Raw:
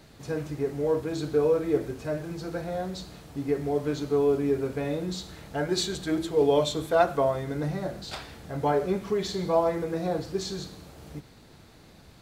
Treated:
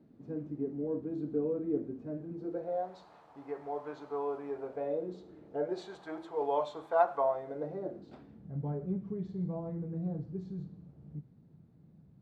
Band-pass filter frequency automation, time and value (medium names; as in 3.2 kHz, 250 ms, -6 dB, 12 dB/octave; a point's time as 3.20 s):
band-pass filter, Q 2.5
2.32 s 250 Hz
2.97 s 910 Hz
4.48 s 910 Hz
5.41 s 310 Hz
5.94 s 890 Hz
7.23 s 890 Hz
8.52 s 160 Hz